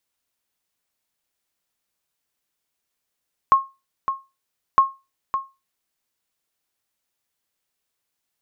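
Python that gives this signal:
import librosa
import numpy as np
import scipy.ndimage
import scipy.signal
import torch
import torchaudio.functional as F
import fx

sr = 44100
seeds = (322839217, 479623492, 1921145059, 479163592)

y = fx.sonar_ping(sr, hz=1080.0, decay_s=0.25, every_s=1.26, pings=2, echo_s=0.56, echo_db=-9.5, level_db=-6.0)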